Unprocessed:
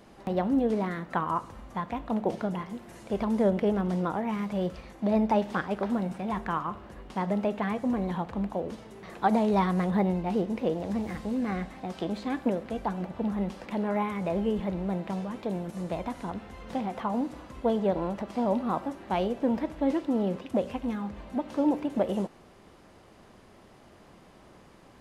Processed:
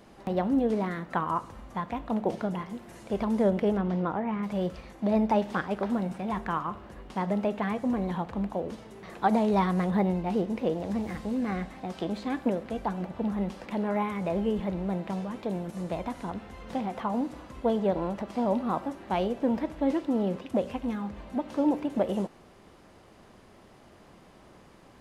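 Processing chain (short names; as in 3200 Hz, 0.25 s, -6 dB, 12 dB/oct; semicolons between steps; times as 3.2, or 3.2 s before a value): 3.77–4.42 LPF 4300 Hz -> 2100 Hz 12 dB/oct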